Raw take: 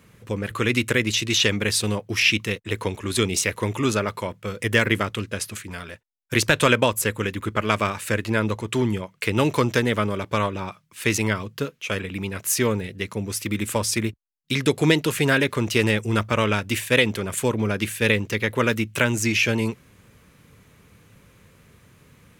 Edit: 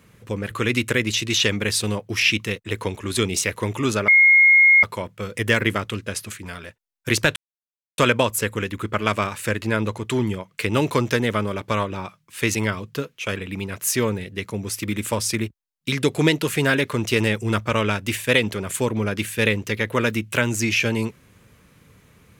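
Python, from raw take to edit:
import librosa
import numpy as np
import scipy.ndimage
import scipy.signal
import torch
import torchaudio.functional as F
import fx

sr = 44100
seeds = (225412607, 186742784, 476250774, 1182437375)

y = fx.edit(x, sr, fx.insert_tone(at_s=4.08, length_s=0.75, hz=2150.0, db=-9.5),
    fx.insert_silence(at_s=6.61, length_s=0.62), tone=tone)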